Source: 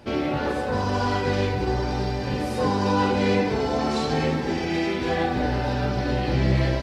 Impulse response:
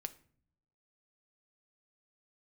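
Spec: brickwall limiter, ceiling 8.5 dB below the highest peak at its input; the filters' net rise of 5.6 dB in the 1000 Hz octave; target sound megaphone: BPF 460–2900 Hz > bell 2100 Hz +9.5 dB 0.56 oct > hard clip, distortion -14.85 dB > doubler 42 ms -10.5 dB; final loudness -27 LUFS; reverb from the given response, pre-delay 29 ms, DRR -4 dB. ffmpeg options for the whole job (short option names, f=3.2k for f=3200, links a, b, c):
-filter_complex "[0:a]equalizer=f=1k:t=o:g=7,alimiter=limit=-15dB:level=0:latency=1,asplit=2[a][b];[1:a]atrim=start_sample=2205,adelay=29[c];[b][c]afir=irnorm=-1:irlink=0,volume=6.5dB[d];[a][d]amix=inputs=2:normalize=0,highpass=460,lowpass=2.9k,equalizer=f=2.1k:t=o:w=0.56:g=9.5,asoftclip=type=hard:threshold=-16.5dB,asplit=2[e][f];[f]adelay=42,volume=-10.5dB[g];[e][g]amix=inputs=2:normalize=0,volume=-6dB"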